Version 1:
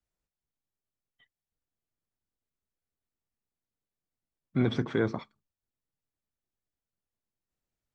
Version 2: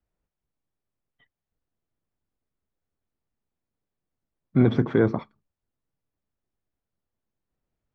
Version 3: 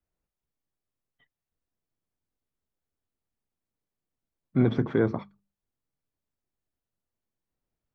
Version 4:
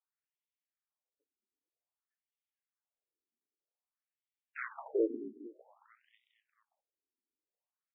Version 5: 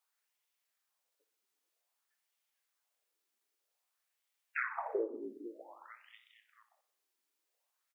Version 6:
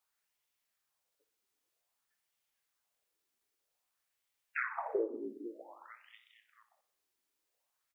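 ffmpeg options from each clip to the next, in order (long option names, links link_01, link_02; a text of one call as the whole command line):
ffmpeg -i in.wav -af "lowpass=frequency=1100:poles=1,volume=8dB" out.wav
ffmpeg -i in.wav -af "bandreject=frequency=50:width_type=h:width=6,bandreject=frequency=100:width_type=h:width=6,bandreject=frequency=150:width_type=h:width=6,bandreject=frequency=200:width_type=h:width=6,volume=-3.5dB" out.wav
ffmpeg -i in.wav -filter_complex "[0:a]acrusher=bits=2:mode=log:mix=0:aa=0.000001,asplit=8[link_01][link_02][link_03][link_04][link_05][link_06][link_07][link_08];[link_02]adelay=225,afreqshift=-52,volume=-14dB[link_09];[link_03]adelay=450,afreqshift=-104,volume=-18dB[link_10];[link_04]adelay=675,afreqshift=-156,volume=-22dB[link_11];[link_05]adelay=900,afreqshift=-208,volume=-26dB[link_12];[link_06]adelay=1125,afreqshift=-260,volume=-30.1dB[link_13];[link_07]adelay=1350,afreqshift=-312,volume=-34.1dB[link_14];[link_08]adelay=1575,afreqshift=-364,volume=-38.1dB[link_15];[link_01][link_09][link_10][link_11][link_12][link_13][link_14][link_15]amix=inputs=8:normalize=0,afftfilt=real='re*between(b*sr/1024,300*pow(2700/300,0.5+0.5*sin(2*PI*0.52*pts/sr))/1.41,300*pow(2700/300,0.5+0.5*sin(2*PI*0.52*pts/sr))*1.41)':imag='im*between(b*sr/1024,300*pow(2700/300,0.5+0.5*sin(2*PI*0.52*pts/sr))/1.41,300*pow(2700/300,0.5+0.5*sin(2*PI*0.52*pts/sr))*1.41)':win_size=1024:overlap=0.75,volume=-4.5dB" out.wav
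ffmpeg -i in.wav -af "highpass=540,acompressor=threshold=-44dB:ratio=5,aecho=1:1:61|122|183|244|305|366:0.2|0.116|0.0671|0.0389|0.0226|0.0131,volume=11dB" out.wav
ffmpeg -i in.wav -af "lowshelf=frequency=180:gain=9" out.wav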